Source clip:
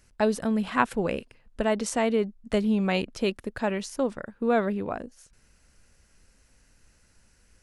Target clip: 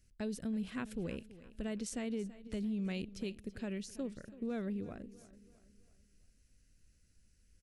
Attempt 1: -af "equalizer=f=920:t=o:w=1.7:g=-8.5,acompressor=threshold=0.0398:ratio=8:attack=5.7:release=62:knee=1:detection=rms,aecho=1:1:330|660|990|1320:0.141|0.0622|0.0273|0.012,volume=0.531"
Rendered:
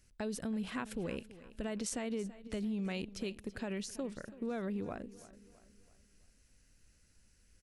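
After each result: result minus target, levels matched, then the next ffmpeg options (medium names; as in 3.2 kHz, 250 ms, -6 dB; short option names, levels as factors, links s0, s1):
1 kHz band +5.0 dB; 8 kHz band +4.0 dB
-af "equalizer=f=920:t=o:w=1.7:g=-20,acompressor=threshold=0.0398:ratio=8:attack=5.7:release=62:knee=1:detection=rms,aecho=1:1:330|660|990|1320:0.141|0.0622|0.0273|0.012,volume=0.531"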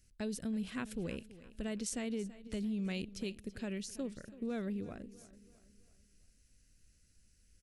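8 kHz band +4.0 dB
-af "equalizer=f=920:t=o:w=1.7:g=-20,acompressor=threshold=0.0398:ratio=8:attack=5.7:release=62:knee=1:detection=rms,highshelf=f=2900:g=-5,aecho=1:1:330|660|990|1320:0.141|0.0622|0.0273|0.012,volume=0.531"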